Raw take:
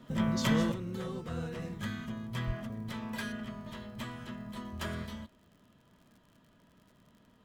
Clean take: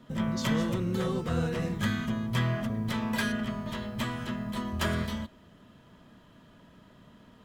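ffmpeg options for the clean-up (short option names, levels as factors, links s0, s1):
-filter_complex "[0:a]adeclick=t=4,asplit=3[s0][s1][s2];[s0]afade=t=out:st=2.46:d=0.02[s3];[s1]highpass=f=140:w=0.5412,highpass=f=140:w=1.3066,afade=t=in:st=2.46:d=0.02,afade=t=out:st=2.58:d=0.02[s4];[s2]afade=t=in:st=2.58:d=0.02[s5];[s3][s4][s5]amix=inputs=3:normalize=0,asetnsamples=n=441:p=0,asendcmd='0.72 volume volume 8.5dB',volume=1"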